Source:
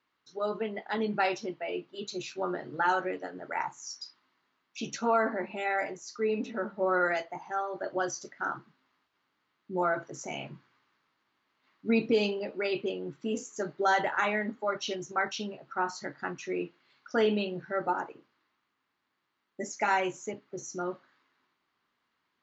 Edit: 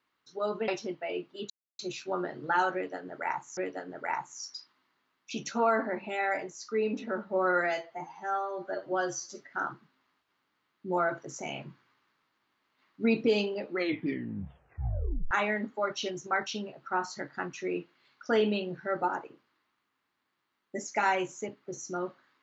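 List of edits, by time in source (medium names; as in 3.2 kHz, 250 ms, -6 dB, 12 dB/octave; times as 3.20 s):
0.68–1.27 s: delete
2.09 s: insert silence 0.29 s
3.04–3.87 s: loop, 2 plays
7.11–8.35 s: stretch 1.5×
12.49 s: tape stop 1.67 s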